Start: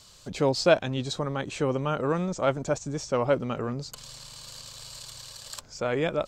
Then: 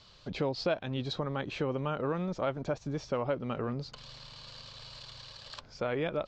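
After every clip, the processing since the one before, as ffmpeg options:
-af "lowpass=f=4500:w=0.5412,lowpass=f=4500:w=1.3066,acompressor=threshold=0.0398:ratio=3,volume=0.841"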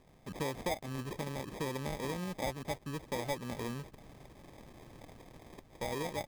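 -af "acrusher=samples=31:mix=1:aa=0.000001,volume=0.562"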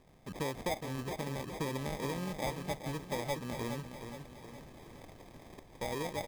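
-af "aecho=1:1:416|832|1248|1664|2080|2496:0.376|0.188|0.094|0.047|0.0235|0.0117"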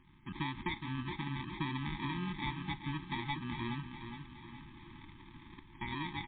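-af "afftfilt=real='re*(1-between(b*sr/4096,370,820))':imag='im*(1-between(b*sr/4096,370,820))':win_size=4096:overlap=0.75,aemphasis=mode=production:type=50fm,volume=1.19" -ar 8000 -c:a libmp3lame -b:a 24k

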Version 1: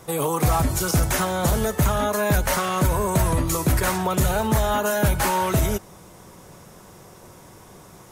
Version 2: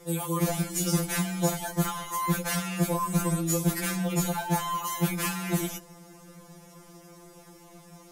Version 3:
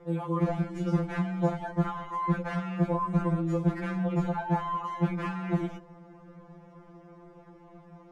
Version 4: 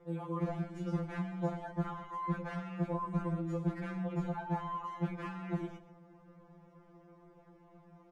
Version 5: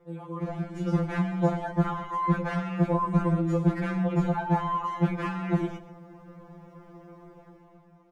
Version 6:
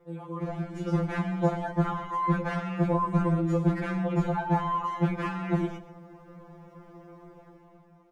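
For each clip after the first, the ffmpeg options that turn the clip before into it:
-af "afftfilt=real='re*2.83*eq(mod(b,8),0)':imag='im*2.83*eq(mod(b,8),0)':win_size=2048:overlap=0.75,volume=0.75"
-af "lowpass=1500"
-filter_complex "[0:a]asplit=2[s0][s1];[s1]adelay=128.3,volume=0.2,highshelf=f=4000:g=-2.89[s2];[s0][s2]amix=inputs=2:normalize=0,volume=0.398"
-af "dynaudnorm=f=130:g=11:m=3.35"
-af "bandreject=f=60:t=h:w=6,bandreject=f=120:t=h:w=6,bandreject=f=180:t=h:w=6"

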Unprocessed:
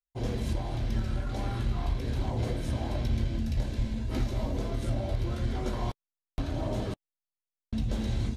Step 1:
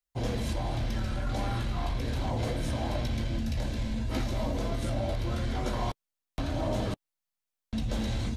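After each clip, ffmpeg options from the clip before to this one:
-filter_complex "[0:a]equalizer=f=390:t=o:w=0.24:g=-7,acrossover=split=330|860|2900[s0][s1][s2][s3];[s0]alimiter=level_in=2:limit=0.0631:level=0:latency=1:release=32,volume=0.501[s4];[s4][s1][s2][s3]amix=inputs=4:normalize=0,volume=1.58"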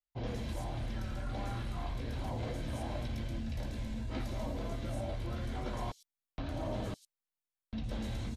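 -filter_complex "[0:a]acrossover=split=5100[s0][s1];[s1]adelay=110[s2];[s0][s2]amix=inputs=2:normalize=0,volume=0.447"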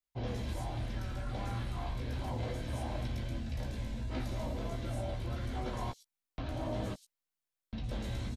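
-filter_complex "[0:a]asplit=2[s0][s1];[s1]adelay=16,volume=0.422[s2];[s0][s2]amix=inputs=2:normalize=0"

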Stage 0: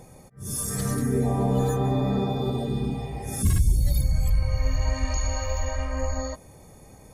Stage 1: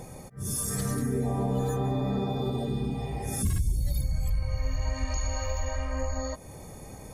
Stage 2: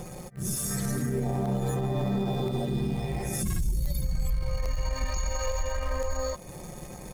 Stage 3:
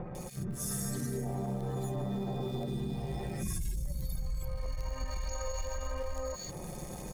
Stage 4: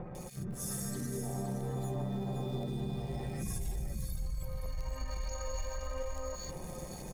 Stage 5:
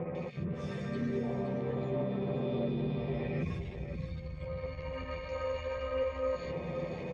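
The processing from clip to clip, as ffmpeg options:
-af "acompressor=threshold=0.0126:ratio=2,volume=1.78"
-filter_complex "[0:a]aecho=1:1:5.6:0.61,asplit=2[s0][s1];[s1]acrusher=bits=4:dc=4:mix=0:aa=0.000001,volume=0.422[s2];[s0][s2]amix=inputs=2:normalize=0,alimiter=limit=0.1:level=0:latency=1:release=37"
-filter_complex "[0:a]acrossover=split=2000[s0][s1];[s1]adelay=150[s2];[s0][s2]amix=inputs=2:normalize=0,acompressor=threshold=0.0178:ratio=2.5"
-af "aecho=1:1:520:0.376,volume=0.75"
-filter_complex "[0:a]asplit=2[s0][s1];[s1]asoftclip=type=hard:threshold=0.015,volume=0.447[s2];[s0][s2]amix=inputs=2:normalize=0,highpass=100,equalizer=f=180:t=q:w=4:g=-3,equalizer=f=310:t=q:w=4:g=-3,equalizer=f=490:t=q:w=4:g=5,equalizer=f=800:t=q:w=4:g=-7,equalizer=f=1500:t=q:w=4:g=-6,equalizer=f=2300:t=q:w=4:g=6,lowpass=f=3200:w=0.5412,lowpass=f=3200:w=1.3066,asplit=2[s3][s4];[s4]adelay=12,volume=0.631[s5];[s3][s5]amix=inputs=2:normalize=0,volume=1.41"

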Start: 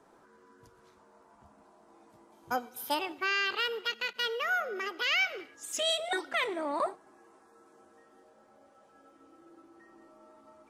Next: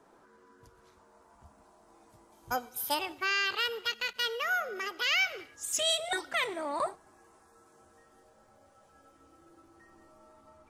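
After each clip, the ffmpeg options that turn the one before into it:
-filter_complex "[0:a]asubboost=boost=7:cutoff=100,acrossover=split=5000[s0][s1];[s1]dynaudnorm=f=730:g=3:m=2[s2];[s0][s2]amix=inputs=2:normalize=0"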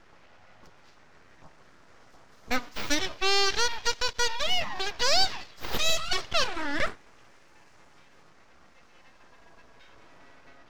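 -af "aeval=exprs='abs(val(0))':c=same,highshelf=f=7300:t=q:w=1.5:g=-10.5,volume=2.24"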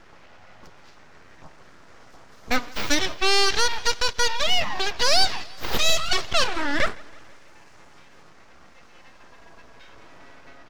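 -af "asoftclip=type=tanh:threshold=0.266,aecho=1:1:163|326|489|652:0.0631|0.0372|0.022|0.013,volume=2"

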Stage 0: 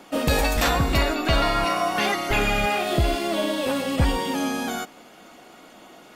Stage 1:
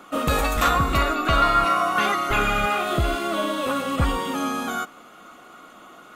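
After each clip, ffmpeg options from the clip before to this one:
-af "superequalizer=10b=3.16:14b=0.562,volume=0.841"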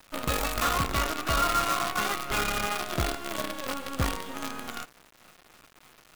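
-af "acrusher=bits=4:dc=4:mix=0:aa=0.000001,volume=0.422"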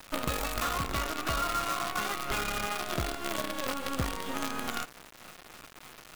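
-af "acompressor=threshold=0.02:ratio=6,volume=2"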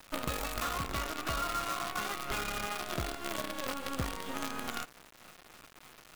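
-af "aeval=exprs='sgn(val(0))*max(abs(val(0))-0.00299,0)':c=same,volume=0.708"

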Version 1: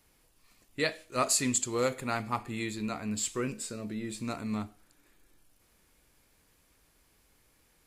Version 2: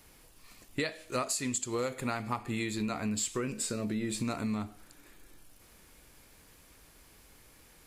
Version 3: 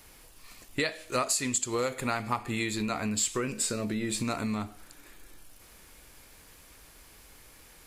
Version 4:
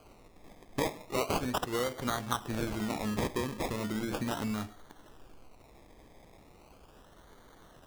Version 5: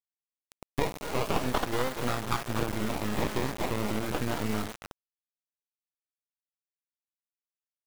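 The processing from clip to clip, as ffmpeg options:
-af "acompressor=threshold=0.0126:ratio=12,volume=2.66"
-af "equalizer=f=180:t=o:w=2.7:g=-4,volume=1.78"
-af "acrusher=samples=24:mix=1:aa=0.000001:lfo=1:lforange=14.4:lforate=0.37,volume=0.75"
-filter_complex "[0:a]acrossover=split=3900[s0][s1];[s1]acompressor=threshold=0.00224:ratio=4:attack=1:release=60[s2];[s0][s2]amix=inputs=2:normalize=0,asplit=2[s3][s4];[s4]adelay=240,highpass=300,lowpass=3400,asoftclip=type=hard:threshold=0.0473,volume=0.447[s5];[s3][s5]amix=inputs=2:normalize=0,acrusher=bits=4:dc=4:mix=0:aa=0.000001,volume=2.11"

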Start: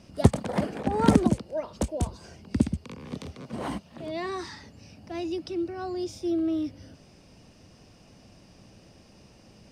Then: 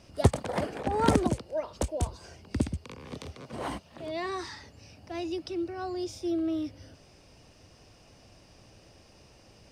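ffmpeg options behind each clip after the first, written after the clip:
-af "equalizer=f=200:w=1.4:g=-8.5"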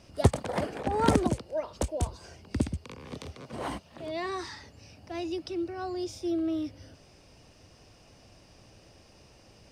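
-af anull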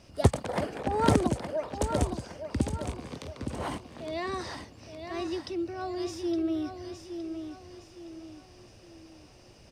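-af "aecho=1:1:865|1730|2595|3460|4325:0.398|0.159|0.0637|0.0255|0.0102"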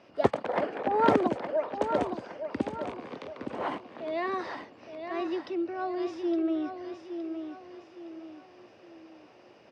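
-af "highpass=310,lowpass=2400,volume=1.5"

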